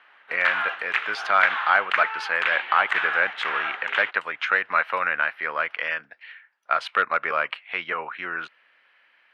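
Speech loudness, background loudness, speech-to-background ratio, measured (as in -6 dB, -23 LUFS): -24.5 LUFS, -27.0 LUFS, 2.5 dB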